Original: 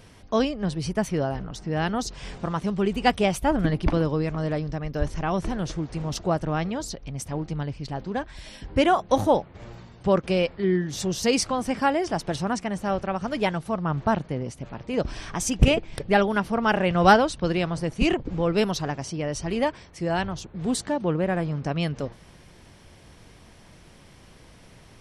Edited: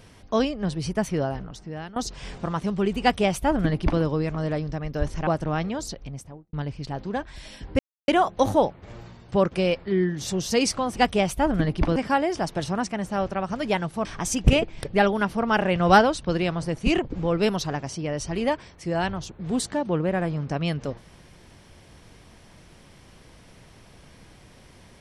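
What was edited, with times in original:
0:01.25–0:01.96: fade out, to −18.5 dB
0:03.01–0:04.01: duplicate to 0:11.68
0:05.27–0:06.28: remove
0:06.96–0:07.54: fade out and dull
0:08.80: splice in silence 0.29 s
0:13.77–0:15.20: remove

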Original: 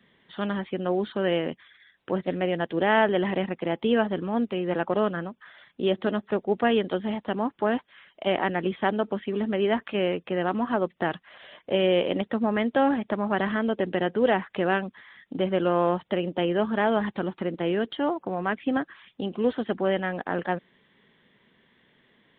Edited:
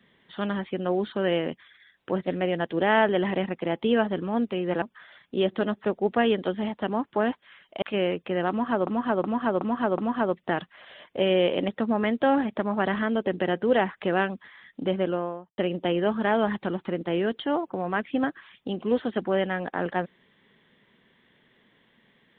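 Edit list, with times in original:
0:04.82–0:05.28: remove
0:08.28–0:09.83: remove
0:10.51–0:10.88: repeat, 5 plays
0:15.39–0:16.11: fade out and dull

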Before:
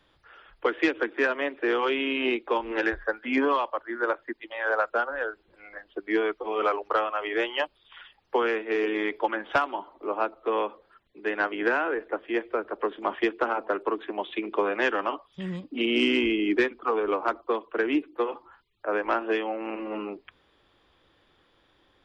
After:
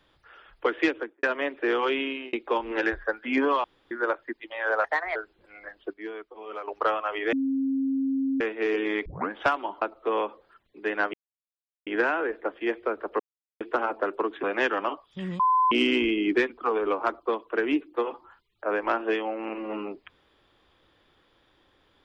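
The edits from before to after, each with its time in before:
0:00.86–0:01.23: fade out and dull
0:01.98–0:02.33: fade out
0:03.64–0:03.91: fill with room tone
0:04.84–0:05.25: play speed 130%
0:06.03–0:06.77: clip gain −12 dB
0:07.42–0:08.50: beep over 269 Hz −23 dBFS
0:09.15: tape start 0.25 s
0:09.91–0:10.22: remove
0:11.54: splice in silence 0.73 s
0:12.87–0:13.28: silence
0:14.11–0:14.65: remove
0:15.61–0:15.93: beep over 1,020 Hz −18 dBFS

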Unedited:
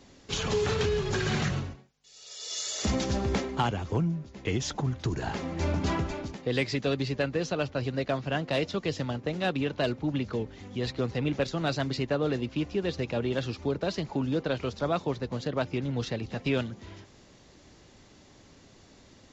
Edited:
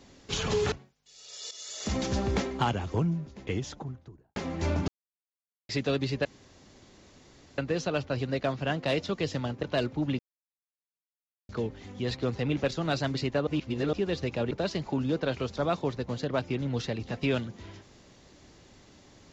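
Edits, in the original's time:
0:00.72–0:01.70: remove
0:02.49–0:03.15: fade in, from −12.5 dB
0:04.16–0:05.34: fade out and dull
0:05.86–0:06.67: silence
0:07.23: splice in room tone 1.33 s
0:09.28–0:09.69: remove
0:10.25: splice in silence 1.30 s
0:12.23–0:12.69: reverse
0:13.27–0:13.74: remove

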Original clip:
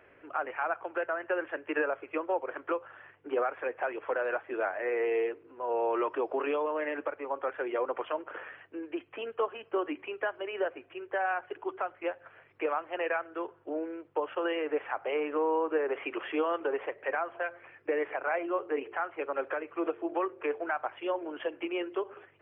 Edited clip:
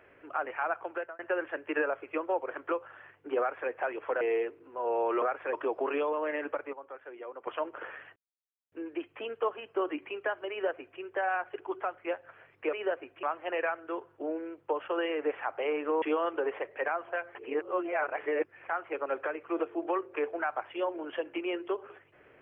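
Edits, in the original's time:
0:00.90–0:01.19: fade out
0:03.39–0:03.70: duplicate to 0:06.06
0:04.21–0:05.05: remove
0:07.26–0:08.00: clip gain −12 dB
0:08.69: splice in silence 0.56 s
0:10.47–0:10.97: duplicate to 0:12.70
0:15.49–0:16.29: remove
0:17.62–0:18.96: reverse

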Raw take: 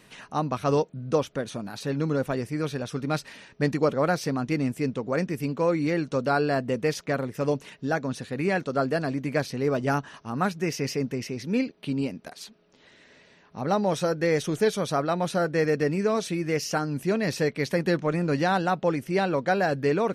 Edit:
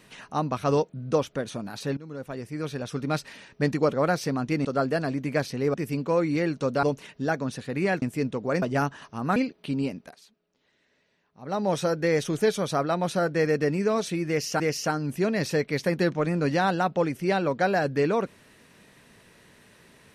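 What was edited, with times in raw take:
0:01.97–0:02.96: fade in, from −20.5 dB
0:04.65–0:05.25: swap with 0:08.65–0:09.74
0:06.34–0:07.46: remove
0:10.48–0:11.55: remove
0:12.13–0:13.89: duck −14 dB, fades 0.29 s
0:16.47–0:16.79: repeat, 2 plays

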